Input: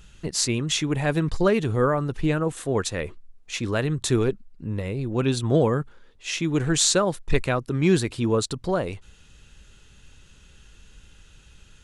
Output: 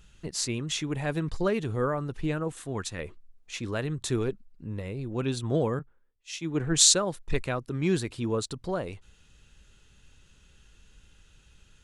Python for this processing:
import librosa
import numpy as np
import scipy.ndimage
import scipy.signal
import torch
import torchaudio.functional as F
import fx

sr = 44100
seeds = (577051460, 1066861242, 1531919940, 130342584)

y = fx.peak_eq(x, sr, hz=500.0, db=-7.5, octaves=0.8, at=(2.58, 2.99))
y = fx.band_widen(y, sr, depth_pct=100, at=(5.79, 6.94))
y = F.gain(torch.from_numpy(y), -6.5).numpy()